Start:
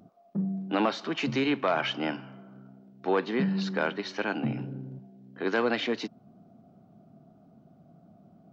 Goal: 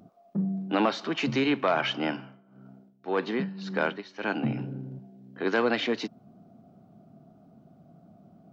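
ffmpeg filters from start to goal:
-filter_complex "[0:a]asettb=1/sr,asplit=3[a][b][c];[a]atrim=end=2.164[d];[b]atrim=start=2.16:end=4.23,asetpts=PTS-STARTPTS,afade=t=in:d=0.004:c=qsin,afade=t=out:st=2.066:d=0.004:c=qsin,tremolo=f=1.8:d=0.79[e];[c]atrim=start=4.226[f];[d][e]acrossfade=d=0.004:c1=hsin:c2=qsin[g];[g][f]acrossfade=d=0.004:c1=qsin:c2=hsin,volume=1.5dB"

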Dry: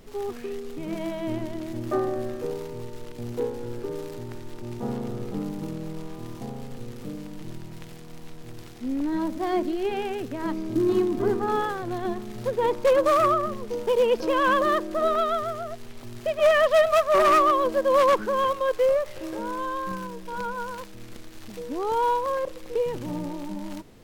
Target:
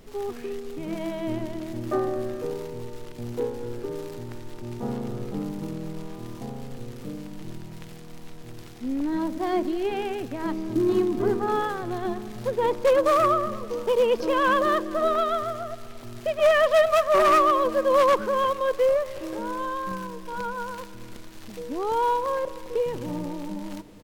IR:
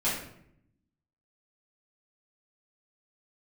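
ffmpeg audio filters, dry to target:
-af "aecho=1:1:225|450|675|900|1125:0.106|0.0593|0.0332|0.0186|0.0104"

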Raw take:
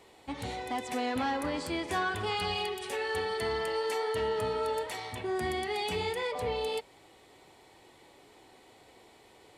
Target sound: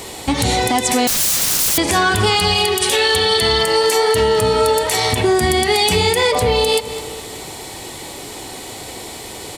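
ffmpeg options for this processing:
-filter_complex "[0:a]asettb=1/sr,asplit=3[a][b][c];[a]atrim=end=2.894[d];[b]atrim=start=2.89:end=3.63,asetpts=PTS-STARTPTS,afade=t=in:d=0.004:c=qsin,afade=t=out:st=0.736:d=0.004:c=qsin,equalizer=f=3.5k:t=o:w=0.59:g=10[e];[c]atrim=start=3.626[f];[d][e]acrossfade=d=0.004:c1=hsin:c2=qsin[g];[g][f]acrossfade=d=0.004:c1=qsin:c2=hsin,asplit=2[h][i];[i]adelay=207,lowpass=f=3.8k:p=1,volume=-17.5dB,asplit=2[j][k];[k]adelay=207,lowpass=f=3.8k:p=1,volume=0.51,asplit=2[l][m];[m]adelay=207,lowpass=f=3.8k:p=1,volume=0.51,asplit=2[n][o];[o]adelay=207,lowpass=f=3.8k:p=1,volume=0.51[p];[h][j][l][n][p]amix=inputs=5:normalize=0,asettb=1/sr,asplit=3[q][r][s];[q]atrim=end=1.074[t];[r]atrim=start=1.07:end=1.78,asetpts=PTS-STARTPTS,afade=t=in:d=0.004:c=qsin,afade=t=out:st=0.706:d=0.004:c=qsin,aeval=exprs='(mod(70.8*val(0)+1,2)-1)/70.8':c=same[u];[s]atrim=start=1.776[v];[t][u]acrossfade=d=0.004:c1=hsin:c2=qsin[w];[w][v]acrossfade=d=0.004:c1=qsin:c2=hsin,bass=f=250:g=5,treble=f=4k:g=12,acompressor=threshold=-35dB:ratio=6,alimiter=level_in=27dB:limit=-1dB:release=50:level=0:latency=1,volume=-4dB"

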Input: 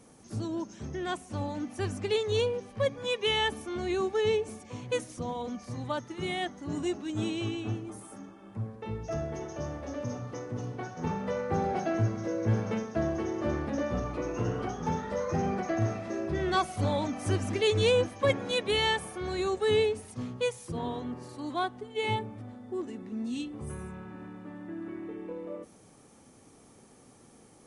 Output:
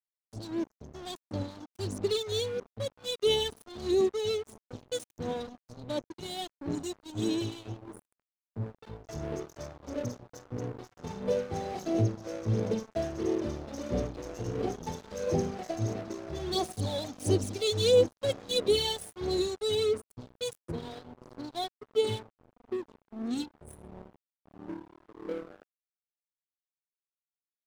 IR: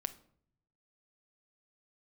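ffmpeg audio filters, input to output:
-filter_complex "[0:a]anlmdn=0.0631,firequalizer=gain_entry='entry(170,0);entry(430,7);entry(1400,-16);entry(3800,11);entry(5800,10)':delay=0.05:min_phase=1,asplit=2[a][b];[b]asoftclip=type=tanh:threshold=-22.5dB,volume=-4dB[c];[a][c]amix=inputs=2:normalize=0,aphaser=in_gain=1:out_gain=1:delay=1.5:decay=0.53:speed=1.5:type=sinusoidal,aeval=exprs='sgn(val(0))*max(abs(val(0))-0.0251,0)':c=same,volume=-8.5dB"

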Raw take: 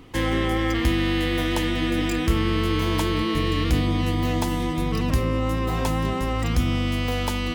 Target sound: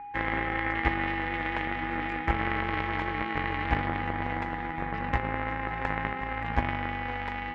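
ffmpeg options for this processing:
-af "aeval=exprs='val(0)+0.0708*sin(2*PI*820*n/s)':c=same,aeval=exprs='0.376*(cos(1*acos(clip(val(0)/0.376,-1,1)))-cos(1*PI/2))+0.106*(cos(3*acos(clip(val(0)/0.376,-1,1)))-cos(3*PI/2))':c=same,lowpass=f=2k:t=q:w=3.6,volume=-2.5dB"

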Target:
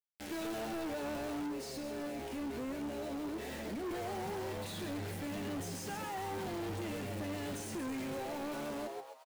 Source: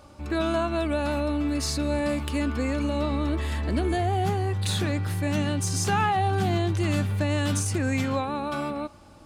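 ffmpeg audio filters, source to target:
-filter_complex "[0:a]highpass=180,alimiter=limit=-21dB:level=0:latency=1:release=54,acrusher=bits=5:mix=0:aa=0.000001,equalizer=f=1.1k:t=o:w=0.53:g=-14.5,asplit=6[a][b][c][d][e][f];[b]adelay=132,afreqshift=120,volume=-8dB[g];[c]adelay=264,afreqshift=240,volume=-15.1dB[h];[d]adelay=396,afreqshift=360,volume=-22.3dB[i];[e]adelay=528,afreqshift=480,volume=-29.4dB[j];[f]adelay=660,afreqshift=600,volume=-36.5dB[k];[a][g][h][i][j][k]amix=inputs=6:normalize=0,asettb=1/sr,asplit=3[l][m][n];[l]atrim=end=1.464[o];[m]atrim=start=1.46:end=3.86,asetpts=PTS-STARTPTS,afade=t=in:d=0.004:c=qsin,afade=t=out:st=2.396:d=0.004:c=qsin,acompressor=threshold=-30dB:ratio=6[p];[n]atrim=start=3.856[q];[o][p]acrossfade=d=0.004:c1=hsin:c2=qsin[r];[r][q]acrossfade=d=0.004:c1=qsin:c2=hsin,flanger=delay=7.7:depth=8:regen=53:speed=0.57:shape=triangular,asoftclip=type=hard:threshold=-36.5dB,adynamicequalizer=threshold=0.00141:dfrequency=2400:dqfactor=0.7:tfrequency=2400:tqfactor=0.7:attack=5:release=100:ratio=0.375:range=3.5:mode=cutabove:tftype=highshelf"

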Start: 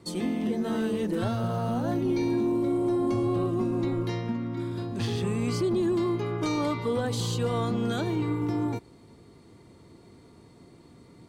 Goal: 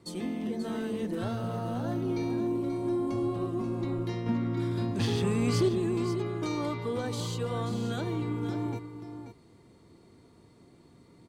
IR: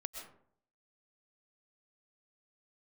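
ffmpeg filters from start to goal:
-filter_complex "[0:a]asettb=1/sr,asplit=3[a][b][c];[a]atrim=end=4.264[d];[b]atrim=start=4.26:end=5.69,asetpts=PTS-STARTPTS,afade=t=in:d=0.004:c=qsin,afade=t=out:st=1.426:d=0.004:c=qsin,acontrast=57[e];[c]atrim=start=5.686[f];[d][e]acrossfade=d=0.004:c1=hsin:c2=qsin[g];[g][f]acrossfade=d=0.004:c1=qsin:c2=hsin,asplit=2[h][i];[i]aecho=0:1:534:0.335[j];[h][j]amix=inputs=2:normalize=0,volume=-5dB"

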